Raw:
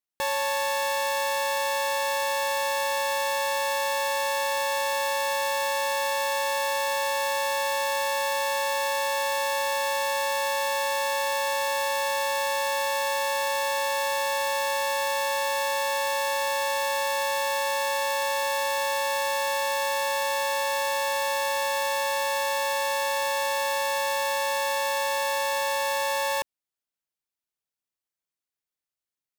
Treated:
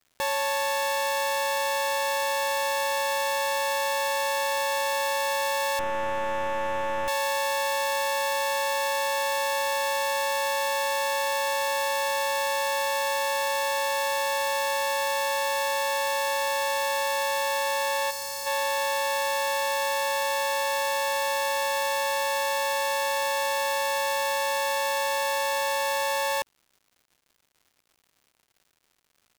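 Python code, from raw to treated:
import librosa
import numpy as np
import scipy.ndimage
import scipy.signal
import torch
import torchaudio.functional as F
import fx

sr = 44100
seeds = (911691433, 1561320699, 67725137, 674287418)

y = fx.delta_mod(x, sr, bps=64000, step_db=-45.0, at=(5.79, 7.08))
y = fx.spec_box(y, sr, start_s=18.1, length_s=0.36, low_hz=240.0, high_hz=3900.0, gain_db=-10)
y = fx.dmg_crackle(y, sr, seeds[0], per_s=200.0, level_db=-50.0)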